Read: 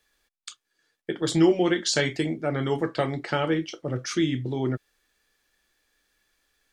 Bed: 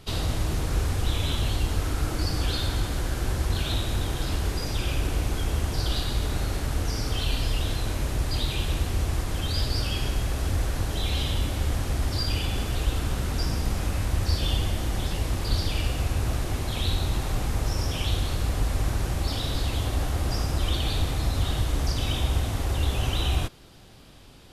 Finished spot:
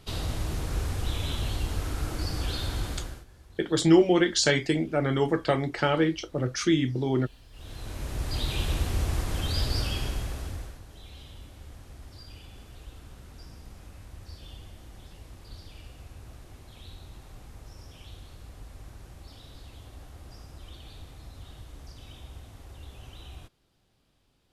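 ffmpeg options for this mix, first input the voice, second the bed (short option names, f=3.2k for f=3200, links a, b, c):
-filter_complex "[0:a]adelay=2500,volume=1dB[a];[1:a]volume=21dB,afade=t=out:st=2.9:d=0.35:silence=0.0749894,afade=t=in:st=7.51:d=1.09:silence=0.0530884,afade=t=out:st=9.79:d=1.01:silence=0.11885[b];[a][b]amix=inputs=2:normalize=0"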